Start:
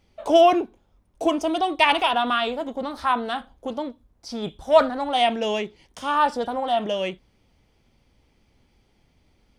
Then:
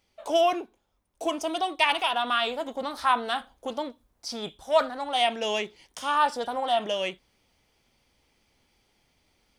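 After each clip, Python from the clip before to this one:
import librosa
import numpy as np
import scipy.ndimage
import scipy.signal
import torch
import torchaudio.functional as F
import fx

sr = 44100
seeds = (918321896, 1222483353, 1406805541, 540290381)

y = fx.high_shelf(x, sr, hz=5500.0, db=6.0)
y = fx.rider(y, sr, range_db=3, speed_s=0.5)
y = fx.low_shelf(y, sr, hz=370.0, db=-10.5)
y = F.gain(torch.from_numpy(y), -2.0).numpy()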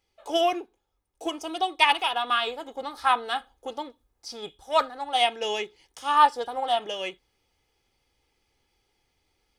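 y = x + 0.46 * np.pad(x, (int(2.4 * sr / 1000.0), 0))[:len(x)]
y = fx.upward_expand(y, sr, threshold_db=-34.0, expansion=1.5)
y = F.gain(torch.from_numpy(y), 3.5).numpy()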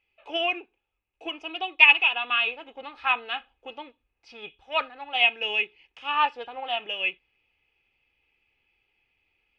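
y = fx.lowpass_res(x, sr, hz=2600.0, q=11.0)
y = F.gain(torch.from_numpy(y), -7.0).numpy()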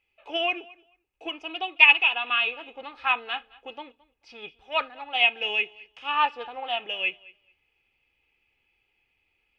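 y = fx.echo_feedback(x, sr, ms=218, feedback_pct=16, wet_db=-23.0)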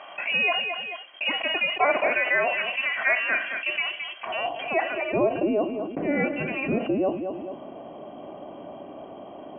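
y = fx.freq_invert(x, sr, carrier_hz=3200)
y = fx.filter_sweep_bandpass(y, sr, from_hz=1600.0, to_hz=290.0, start_s=4.14, end_s=5.46, q=1.3)
y = fx.env_flatten(y, sr, amount_pct=70)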